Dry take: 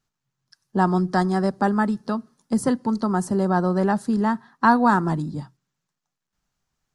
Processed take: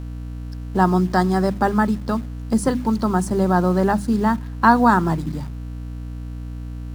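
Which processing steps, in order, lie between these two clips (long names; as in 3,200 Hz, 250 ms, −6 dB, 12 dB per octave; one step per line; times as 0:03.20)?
mains-hum notches 50/100/150/200/250/300 Hz
mains hum 60 Hz, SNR 10 dB
in parallel at −8 dB: bit-depth reduction 6 bits, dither none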